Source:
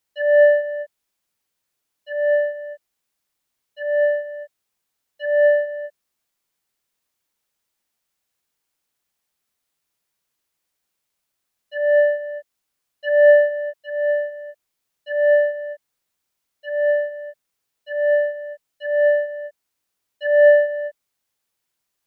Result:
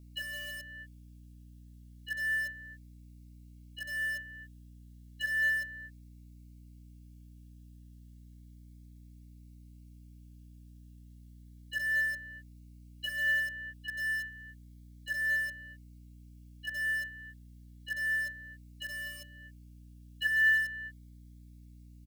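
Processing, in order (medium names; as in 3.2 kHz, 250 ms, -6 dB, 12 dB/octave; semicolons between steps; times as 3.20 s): inverse Chebyshev high-pass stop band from 760 Hz, stop band 50 dB; comb 1.8 ms, depth 49%; in parallel at -11.5 dB: bit crusher 6-bit; on the sum: hum 60 Hz, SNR 18 dB; Shepard-style phaser rising 0.32 Hz; trim +1.5 dB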